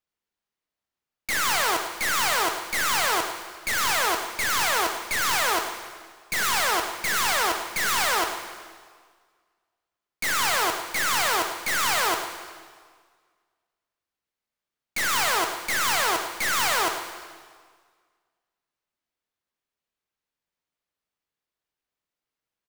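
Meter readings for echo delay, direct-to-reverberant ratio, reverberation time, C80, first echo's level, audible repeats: 102 ms, 4.5 dB, 1.7 s, 6.5 dB, -10.0 dB, 1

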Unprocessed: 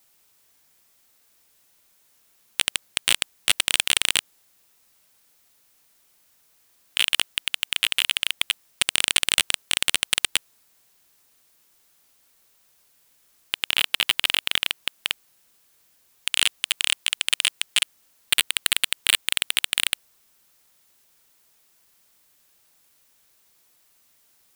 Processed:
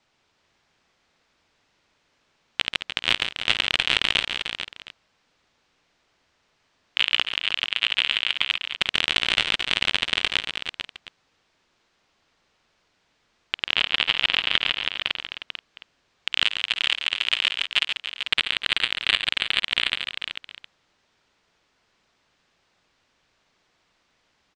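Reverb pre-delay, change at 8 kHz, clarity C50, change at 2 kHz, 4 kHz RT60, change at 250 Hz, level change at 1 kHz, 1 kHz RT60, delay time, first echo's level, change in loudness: no reverb, -17.0 dB, no reverb, +2.0 dB, no reverb, +4.0 dB, +3.5 dB, no reverb, 52 ms, -19.0 dB, -0.5 dB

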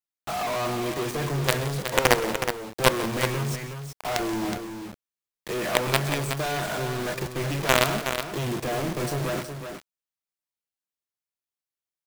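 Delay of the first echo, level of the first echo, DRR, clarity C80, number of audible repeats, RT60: 130 ms, -17.5 dB, no reverb, no reverb, 3, no reverb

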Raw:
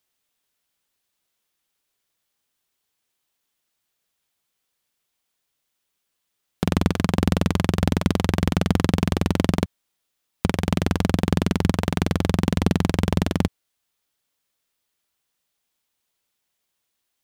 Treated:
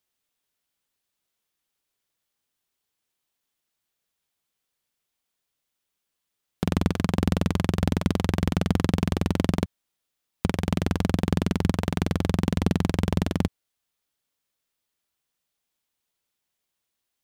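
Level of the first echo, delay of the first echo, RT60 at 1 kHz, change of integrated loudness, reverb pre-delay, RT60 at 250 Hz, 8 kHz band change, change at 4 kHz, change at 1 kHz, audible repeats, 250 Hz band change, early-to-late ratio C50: no echo, no echo, no reverb, -3.0 dB, no reverb, no reverb, -4.5 dB, -4.5 dB, -4.0 dB, no echo, -3.0 dB, no reverb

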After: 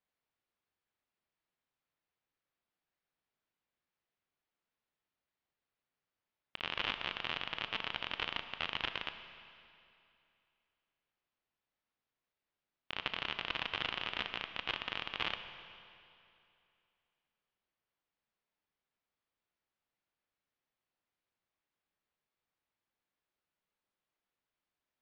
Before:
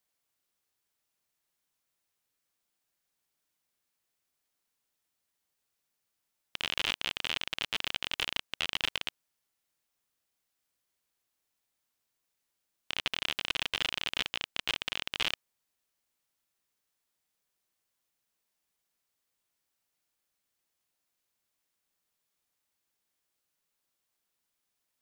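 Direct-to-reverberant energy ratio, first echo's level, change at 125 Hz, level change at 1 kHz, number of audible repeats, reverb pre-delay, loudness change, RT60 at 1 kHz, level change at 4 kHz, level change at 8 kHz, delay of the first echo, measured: 8.5 dB, no echo, -2.0 dB, +0.5 dB, no echo, 22 ms, -5.0 dB, 2.6 s, -6.5 dB, under -20 dB, no echo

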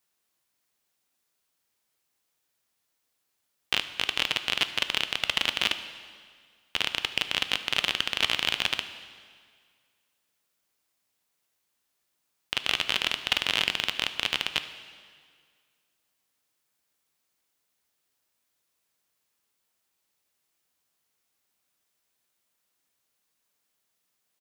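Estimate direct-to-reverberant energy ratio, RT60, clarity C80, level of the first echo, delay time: 9.5 dB, 1.9 s, 12.5 dB, -20.5 dB, 74 ms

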